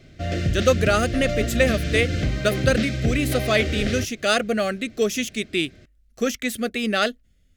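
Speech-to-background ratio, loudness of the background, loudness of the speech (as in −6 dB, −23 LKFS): 2.5 dB, −26.0 LKFS, −23.5 LKFS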